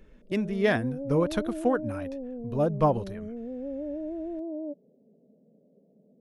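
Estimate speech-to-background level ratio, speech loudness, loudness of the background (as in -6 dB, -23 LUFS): 9.0 dB, -28.0 LUFS, -37.0 LUFS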